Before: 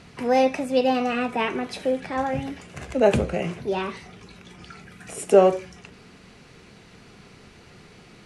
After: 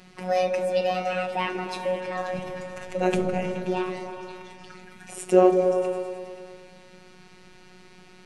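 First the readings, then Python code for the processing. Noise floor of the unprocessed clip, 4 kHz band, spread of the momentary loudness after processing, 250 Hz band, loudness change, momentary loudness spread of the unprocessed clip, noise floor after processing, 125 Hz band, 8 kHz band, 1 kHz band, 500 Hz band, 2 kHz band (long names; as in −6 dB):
−50 dBFS, −3.0 dB, 21 LU, −2.0 dB, −2.5 dB, 18 LU, −51 dBFS, −2.5 dB, −3.0 dB, −2.0 dB, −1.5 dB, −2.0 dB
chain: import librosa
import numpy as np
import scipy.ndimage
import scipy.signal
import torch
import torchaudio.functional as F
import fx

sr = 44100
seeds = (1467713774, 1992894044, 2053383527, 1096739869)

y = fx.robotise(x, sr, hz=183.0)
y = fx.echo_opening(y, sr, ms=106, hz=400, octaves=1, feedback_pct=70, wet_db=-3)
y = y * librosa.db_to_amplitude(-1.0)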